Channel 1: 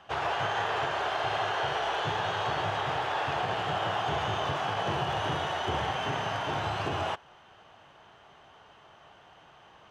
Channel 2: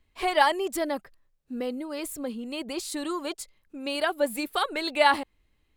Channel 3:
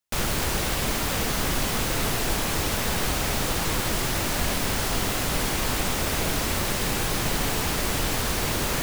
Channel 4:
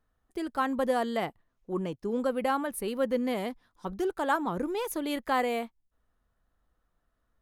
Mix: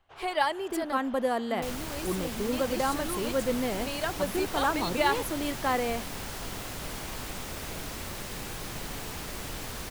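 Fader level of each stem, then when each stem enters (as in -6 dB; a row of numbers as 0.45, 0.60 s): -19.5, -5.5, -12.0, -0.5 dB; 0.00, 0.00, 1.50, 0.35 s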